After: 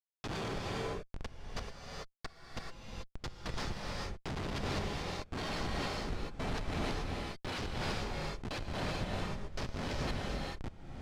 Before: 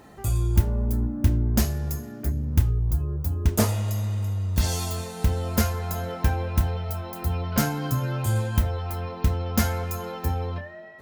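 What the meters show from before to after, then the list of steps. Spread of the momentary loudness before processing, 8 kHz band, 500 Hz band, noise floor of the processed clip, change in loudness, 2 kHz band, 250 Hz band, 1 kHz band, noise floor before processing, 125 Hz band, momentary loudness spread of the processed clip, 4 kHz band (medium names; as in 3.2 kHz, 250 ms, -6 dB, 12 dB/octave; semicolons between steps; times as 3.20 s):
7 LU, -16.0 dB, -8.5 dB, -68 dBFS, -13.5 dB, -4.5 dB, -12.5 dB, -7.5 dB, -40 dBFS, -18.0 dB, 10 LU, -4.5 dB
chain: recorder AGC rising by 8.6 dB/s; gate with hold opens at -23 dBFS; high-pass 300 Hz 24 dB/octave; spectral gate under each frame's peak -15 dB weak; treble shelf 5.4 kHz +8.5 dB; compression 16:1, threshold -36 dBFS, peak gain reduction 17.5 dB; LFO low-pass square 0.94 Hz 510–4700 Hz; Schmitt trigger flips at -40 dBFS; vibrato 1.7 Hz 60 cents; distance through air 75 m; gated-style reverb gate 460 ms rising, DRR -1.5 dB; trim +9.5 dB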